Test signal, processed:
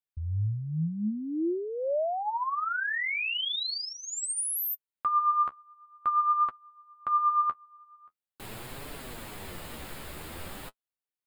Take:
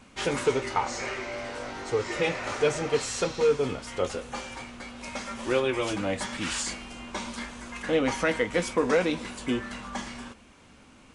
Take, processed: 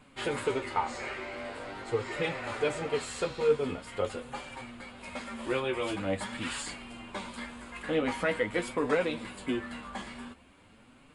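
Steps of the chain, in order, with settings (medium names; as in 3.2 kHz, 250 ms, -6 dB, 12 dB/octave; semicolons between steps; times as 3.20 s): peaking EQ 5.9 kHz -14.5 dB 0.35 oct; flange 0.45 Hz, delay 6.6 ms, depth 7.8 ms, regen +32%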